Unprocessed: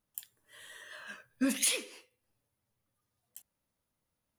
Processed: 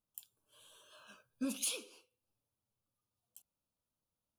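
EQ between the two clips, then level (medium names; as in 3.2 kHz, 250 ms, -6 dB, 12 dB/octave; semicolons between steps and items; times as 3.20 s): Butterworth band-stop 1.9 kHz, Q 1.9; -7.5 dB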